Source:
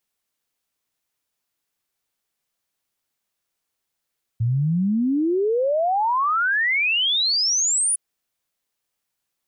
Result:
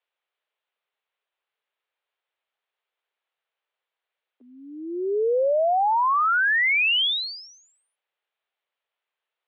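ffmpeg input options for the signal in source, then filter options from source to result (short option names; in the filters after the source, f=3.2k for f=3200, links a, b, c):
-f lavfi -i "aevalsrc='0.133*clip(min(t,3.56-t)/0.01,0,1)*sin(2*PI*110*3.56/log(10000/110)*(exp(log(10000/110)*t/3.56)-1))':d=3.56:s=44100"
-af "highpass=f=280:t=q:w=0.5412,highpass=f=280:t=q:w=1.307,lowpass=f=3.4k:t=q:w=0.5176,lowpass=f=3.4k:t=q:w=0.7071,lowpass=f=3.4k:t=q:w=1.932,afreqshift=130"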